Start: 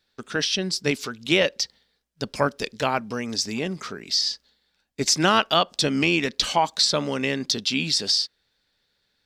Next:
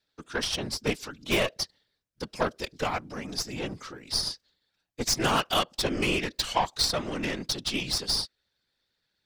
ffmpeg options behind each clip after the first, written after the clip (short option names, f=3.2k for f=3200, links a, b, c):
-af "aeval=exprs='0.531*(cos(1*acos(clip(val(0)/0.531,-1,1)))-cos(1*PI/2))+0.106*(cos(4*acos(clip(val(0)/0.531,-1,1)))-cos(4*PI/2))+0.0211*(cos(5*acos(clip(val(0)/0.531,-1,1)))-cos(5*PI/2))+0.119*(cos(6*acos(clip(val(0)/0.531,-1,1)))-cos(6*PI/2))+0.0237*(cos(7*acos(clip(val(0)/0.531,-1,1)))-cos(7*PI/2))':c=same,afftfilt=real='hypot(re,im)*cos(2*PI*random(0))':imag='hypot(re,im)*sin(2*PI*random(1))':win_size=512:overlap=0.75"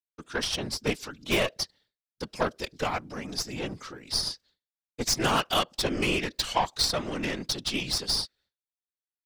-af "agate=range=-33dB:threshold=-56dB:ratio=3:detection=peak"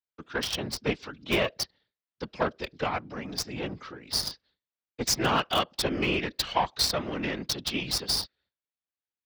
-filter_complex "[0:a]highpass=41,acrossover=split=300|1100|4600[a][b][c][d];[d]acrusher=bits=4:mix=0:aa=0.5[e];[a][b][c][e]amix=inputs=4:normalize=0"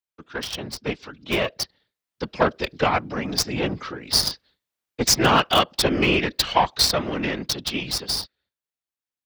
-af "dynaudnorm=f=200:g=21:m=11.5dB"